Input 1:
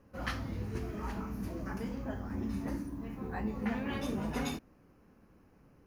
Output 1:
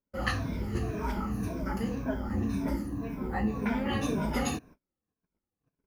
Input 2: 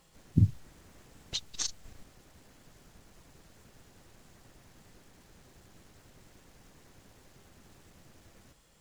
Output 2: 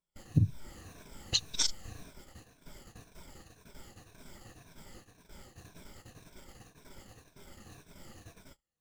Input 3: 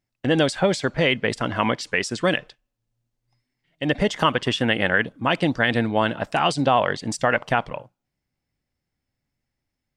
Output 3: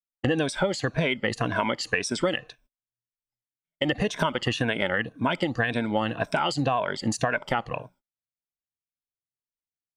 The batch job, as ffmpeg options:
-af "afftfilt=real='re*pow(10,12/40*sin(2*PI*(1.6*log(max(b,1)*sr/1024/100)/log(2)-(-1.9)*(pts-256)/sr)))':imag='im*pow(10,12/40*sin(2*PI*(1.6*log(max(b,1)*sr/1024/100)/log(2)-(-1.9)*(pts-256)/sr)))':win_size=1024:overlap=0.75,agate=range=-35dB:threshold=-55dB:ratio=16:detection=peak,acompressor=threshold=-27dB:ratio=6,volume=4.5dB"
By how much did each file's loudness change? +5.5, 0.0, -4.5 LU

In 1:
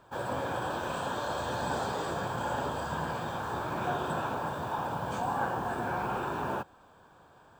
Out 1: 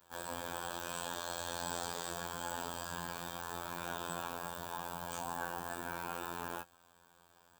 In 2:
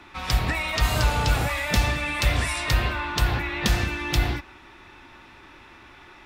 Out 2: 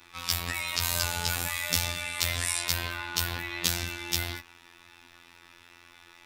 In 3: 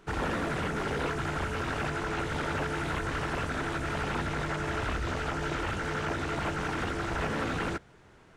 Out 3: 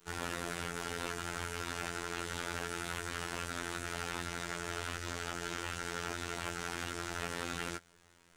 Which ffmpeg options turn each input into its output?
-af "afftfilt=real='hypot(re,im)*cos(PI*b)':imag='0':win_size=2048:overlap=0.75,crystalizer=i=5.5:c=0,volume=-8dB"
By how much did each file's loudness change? -7.5, -4.5, -7.0 LU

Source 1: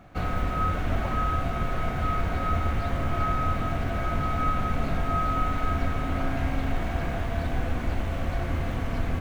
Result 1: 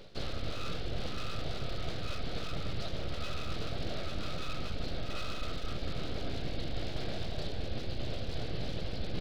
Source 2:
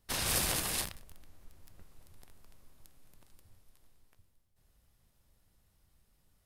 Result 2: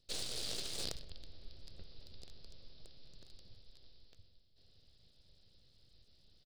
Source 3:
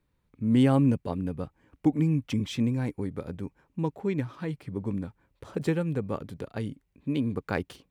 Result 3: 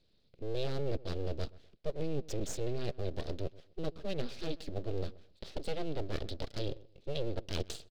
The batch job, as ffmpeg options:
-filter_complex "[0:a]bass=f=250:g=1,treble=f=4k:g=12,areverse,acompressor=threshold=-32dB:ratio=8,areverse,aresample=11025,aresample=44100,aeval=exprs='abs(val(0))':c=same,equalizer=f=250:t=o:w=1:g=-3,equalizer=f=500:t=o:w=1:g=6,equalizer=f=1k:t=o:w=1:g=-11,equalizer=f=2k:t=o:w=1:g=-5,equalizer=f=4k:t=o:w=1:g=9,asplit=2[a][b];[b]adelay=129,lowpass=f=1.8k:p=1,volume=-20dB,asplit=2[c][d];[d]adelay=129,lowpass=f=1.8k:p=1,volume=0.25[e];[c][e]amix=inputs=2:normalize=0[f];[a][f]amix=inputs=2:normalize=0,volume=2.5dB"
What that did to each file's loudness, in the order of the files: -10.5, -12.5, -10.5 LU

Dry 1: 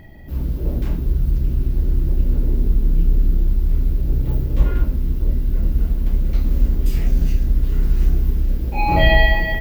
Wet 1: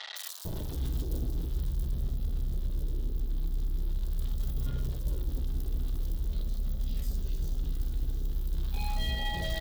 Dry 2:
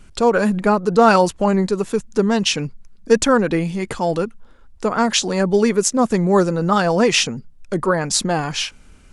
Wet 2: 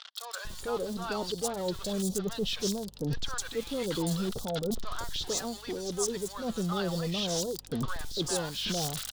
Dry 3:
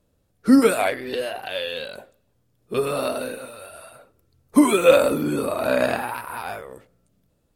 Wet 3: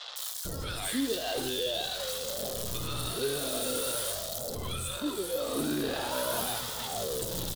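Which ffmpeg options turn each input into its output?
-filter_complex "[0:a]aeval=exprs='val(0)+0.5*0.0631*sgn(val(0))':c=same,highshelf=f=2.9k:t=q:w=3:g=6.5,areverse,acompressor=threshold=-24dB:ratio=10,areverse,aeval=exprs='val(0)+0.00282*(sin(2*PI*50*n/s)+sin(2*PI*2*50*n/s)/2+sin(2*PI*3*50*n/s)/3+sin(2*PI*4*50*n/s)/4+sin(2*PI*5*50*n/s)/5)':c=same,acrossover=split=830|4500[a][b][c];[c]adelay=160[d];[a]adelay=450[e];[e][b][d]amix=inputs=3:normalize=0,flanger=delay=1.5:depth=1.1:regen=-60:speed=0.44:shape=sinusoidal"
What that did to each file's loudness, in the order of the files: -14.5, -15.0, -10.5 LU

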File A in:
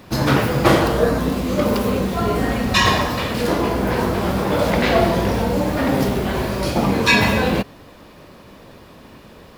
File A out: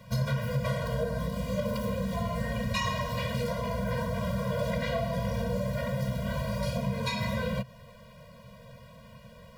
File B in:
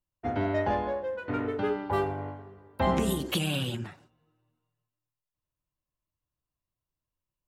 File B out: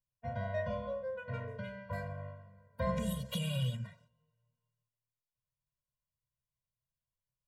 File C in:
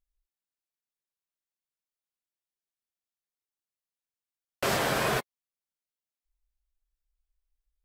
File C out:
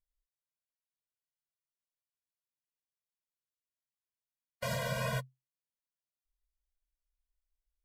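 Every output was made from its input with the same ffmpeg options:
-af "equalizer=f=130:w=7.2:g=10,acompressor=threshold=-19dB:ratio=6,afftfilt=real='re*eq(mod(floor(b*sr/1024/230),2),0)':imag='im*eq(mod(floor(b*sr/1024/230),2),0)':win_size=1024:overlap=0.75,volume=-6dB"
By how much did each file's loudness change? -13.0, -8.5, -8.0 LU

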